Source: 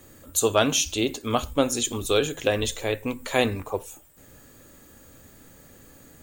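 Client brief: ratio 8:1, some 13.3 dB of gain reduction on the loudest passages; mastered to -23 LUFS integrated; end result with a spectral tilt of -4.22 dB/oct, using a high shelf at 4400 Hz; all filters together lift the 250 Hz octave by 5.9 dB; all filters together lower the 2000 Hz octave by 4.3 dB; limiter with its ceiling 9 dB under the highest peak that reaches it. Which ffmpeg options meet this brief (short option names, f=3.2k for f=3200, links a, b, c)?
-af "equalizer=f=250:t=o:g=7,equalizer=f=2k:t=o:g=-5,highshelf=f=4.4k:g=-4,acompressor=threshold=-28dB:ratio=8,volume=12.5dB,alimiter=limit=-12dB:level=0:latency=1"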